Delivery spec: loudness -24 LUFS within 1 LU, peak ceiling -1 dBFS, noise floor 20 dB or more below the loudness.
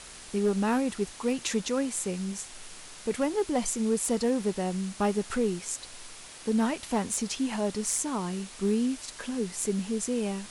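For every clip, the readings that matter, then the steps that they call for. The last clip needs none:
clipped 0.3%; flat tops at -18.5 dBFS; noise floor -46 dBFS; noise floor target -50 dBFS; loudness -29.5 LUFS; peak -18.5 dBFS; loudness target -24.0 LUFS
-> clip repair -18.5 dBFS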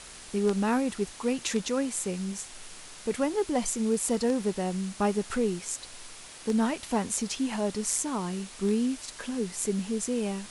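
clipped 0.0%; noise floor -46 dBFS; noise floor target -50 dBFS
-> denoiser 6 dB, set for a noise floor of -46 dBFS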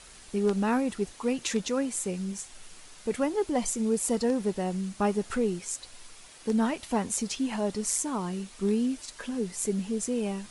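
noise floor -51 dBFS; loudness -29.5 LUFS; peak -11.0 dBFS; loudness target -24.0 LUFS
-> gain +5.5 dB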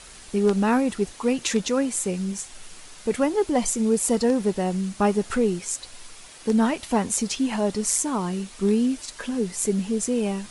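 loudness -24.0 LUFS; peak -5.5 dBFS; noise floor -45 dBFS

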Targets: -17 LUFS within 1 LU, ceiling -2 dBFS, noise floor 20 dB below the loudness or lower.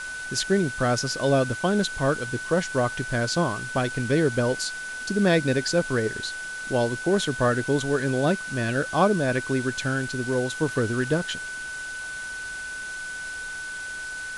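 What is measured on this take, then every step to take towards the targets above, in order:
steady tone 1500 Hz; tone level -32 dBFS; noise floor -34 dBFS; noise floor target -46 dBFS; loudness -25.5 LUFS; peak -8.5 dBFS; loudness target -17.0 LUFS
-> notch 1500 Hz, Q 30; denoiser 12 dB, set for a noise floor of -34 dBFS; gain +8.5 dB; limiter -2 dBFS

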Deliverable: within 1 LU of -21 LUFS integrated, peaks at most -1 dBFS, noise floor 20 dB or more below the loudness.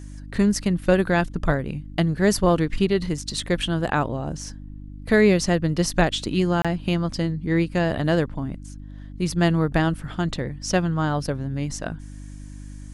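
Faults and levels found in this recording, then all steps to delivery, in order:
dropouts 1; longest dropout 26 ms; hum 50 Hz; harmonics up to 300 Hz; hum level -35 dBFS; loudness -23.0 LUFS; peak -5.0 dBFS; loudness target -21.0 LUFS
-> interpolate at 6.62, 26 ms; de-hum 50 Hz, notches 6; gain +2 dB

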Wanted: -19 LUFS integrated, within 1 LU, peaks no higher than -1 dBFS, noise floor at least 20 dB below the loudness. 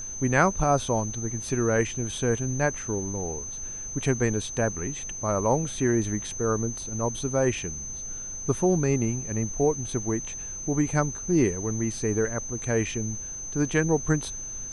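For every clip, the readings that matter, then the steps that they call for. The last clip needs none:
steady tone 6200 Hz; tone level -34 dBFS; noise floor -36 dBFS; noise floor target -47 dBFS; loudness -27.0 LUFS; peak -7.5 dBFS; loudness target -19.0 LUFS
-> notch 6200 Hz, Q 30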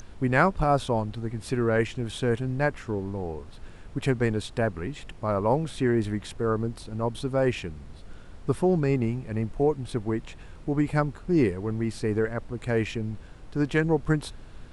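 steady tone none; noise floor -45 dBFS; noise floor target -48 dBFS
-> noise print and reduce 6 dB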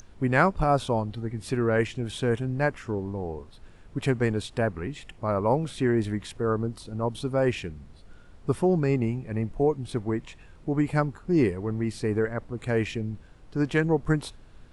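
noise floor -50 dBFS; loudness -27.5 LUFS; peak -8.0 dBFS; loudness target -19.0 LUFS
-> gain +8.5 dB; limiter -1 dBFS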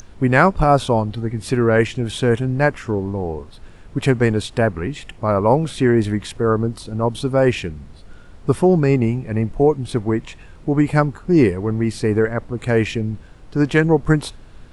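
loudness -19.0 LUFS; peak -1.0 dBFS; noise floor -42 dBFS

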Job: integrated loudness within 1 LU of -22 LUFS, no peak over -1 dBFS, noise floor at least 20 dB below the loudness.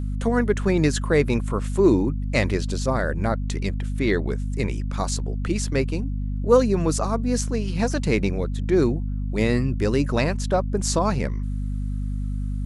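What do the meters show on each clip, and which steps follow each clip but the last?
hum 50 Hz; harmonics up to 250 Hz; hum level -24 dBFS; loudness -23.5 LUFS; peak -4.0 dBFS; loudness target -22.0 LUFS
-> notches 50/100/150/200/250 Hz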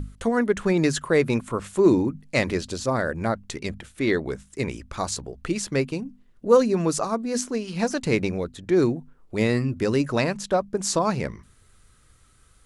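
hum none; loudness -24.5 LUFS; peak -5.0 dBFS; loudness target -22.0 LUFS
-> gain +2.5 dB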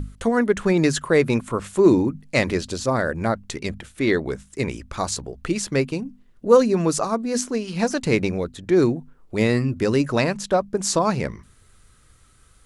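loudness -22.0 LUFS; peak -2.5 dBFS; noise floor -55 dBFS

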